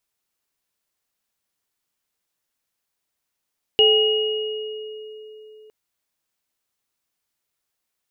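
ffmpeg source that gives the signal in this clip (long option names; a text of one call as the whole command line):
ffmpeg -f lavfi -i "aevalsrc='0.188*pow(10,-3*t/3.82)*sin(2*PI*431*t)+0.0422*pow(10,-3*t/1.35)*sin(2*PI*790*t)+0.251*pow(10,-3*t/2.21)*sin(2*PI*2880*t)':duration=1.91:sample_rate=44100" out.wav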